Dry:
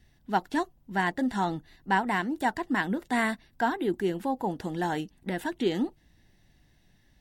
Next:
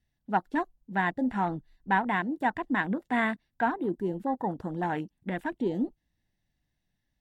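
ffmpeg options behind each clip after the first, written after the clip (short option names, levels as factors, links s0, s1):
-af "afwtdn=0.0141,equalizer=f=380:t=o:w=0.37:g=-4"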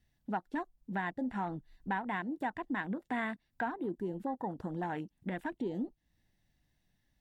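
-af "acompressor=threshold=0.00794:ratio=2.5,volume=1.5"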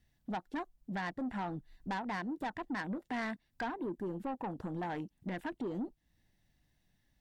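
-af "asoftclip=type=tanh:threshold=0.0211,volume=1.19"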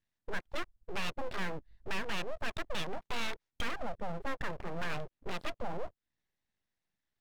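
-filter_complex "[0:a]asplit=2[s0][s1];[s1]highpass=f=720:p=1,volume=2,asoftclip=type=tanh:threshold=0.0251[s2];[s0][s2]amix=inputs=2:normalize=0,lowpass=f=3400:p=1,volume=0.501,afwtdn=0.00562,aeval=exprs='abs(val(0))':c=same,volume=2.24"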